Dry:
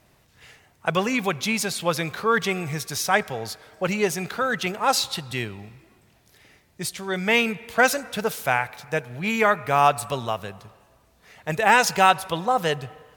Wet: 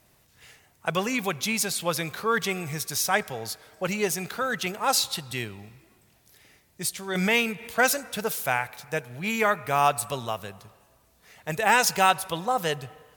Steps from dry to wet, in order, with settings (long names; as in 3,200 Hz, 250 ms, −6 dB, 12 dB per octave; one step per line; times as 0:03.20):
high-shelf EQ 6,400 Hz +9.5 dB
0:07.15–0:07.77: background raised ahead of every attack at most 31 dB per second
level −4 dB